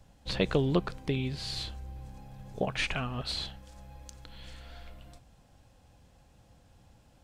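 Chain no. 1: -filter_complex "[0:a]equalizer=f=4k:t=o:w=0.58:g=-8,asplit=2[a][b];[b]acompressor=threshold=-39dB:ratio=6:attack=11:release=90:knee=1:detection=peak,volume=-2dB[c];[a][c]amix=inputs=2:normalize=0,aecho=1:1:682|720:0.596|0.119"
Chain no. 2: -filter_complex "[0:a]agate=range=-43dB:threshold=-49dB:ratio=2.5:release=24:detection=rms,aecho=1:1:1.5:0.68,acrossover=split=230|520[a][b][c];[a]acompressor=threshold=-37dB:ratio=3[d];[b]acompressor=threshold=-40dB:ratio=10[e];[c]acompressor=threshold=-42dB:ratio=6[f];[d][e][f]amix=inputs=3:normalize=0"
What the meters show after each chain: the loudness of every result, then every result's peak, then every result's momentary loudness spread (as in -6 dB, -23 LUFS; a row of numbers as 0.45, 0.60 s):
-31.0, -40.5 LUFS; -10.5, -21.0 dBFS; 19, 12 LU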